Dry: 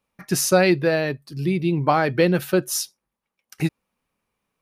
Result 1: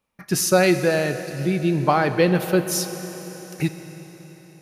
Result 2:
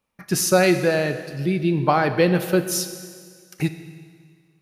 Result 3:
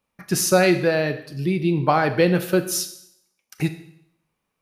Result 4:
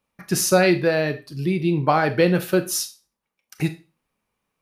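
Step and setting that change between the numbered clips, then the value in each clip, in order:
Schroeder reverb, RT60: 4.5, 1.9, 0.72, 0.31 s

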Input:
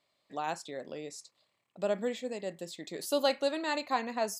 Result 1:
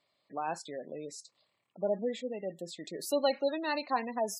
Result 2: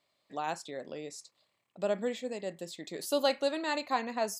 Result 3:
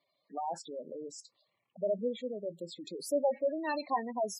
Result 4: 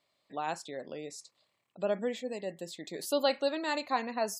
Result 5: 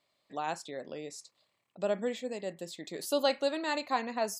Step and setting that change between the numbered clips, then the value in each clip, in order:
spectral gate, under each frame's peak: -20, -60, -10, -35, -45 dB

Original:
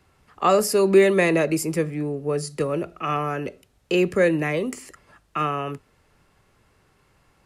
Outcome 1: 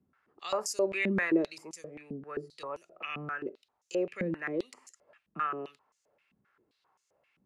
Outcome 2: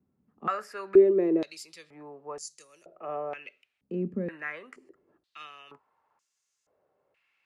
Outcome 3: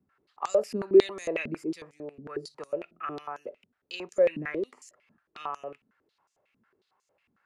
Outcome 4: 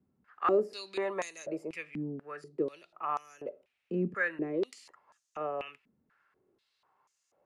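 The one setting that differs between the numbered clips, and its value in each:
stepped band-pass, rate: 7.6, 2.1, 11, 4.1 Hz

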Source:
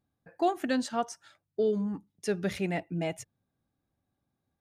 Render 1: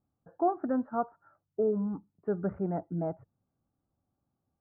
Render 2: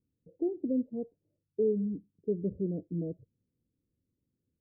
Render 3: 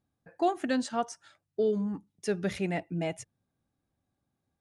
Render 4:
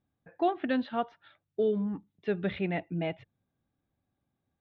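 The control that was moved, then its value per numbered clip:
Chebyshev low-pass, frequency: 1400, 500, 11000, 3700 Hz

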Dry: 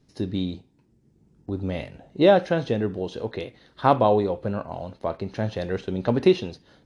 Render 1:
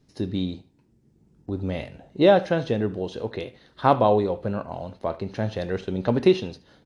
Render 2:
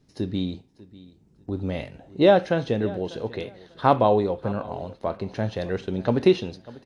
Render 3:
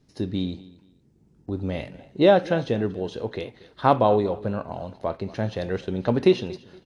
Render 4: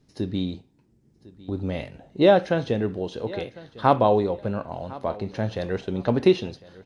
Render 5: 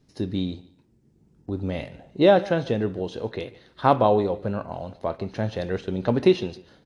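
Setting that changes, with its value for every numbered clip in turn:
feedback echo, time: 75, 595, 235, 1053, 146 ms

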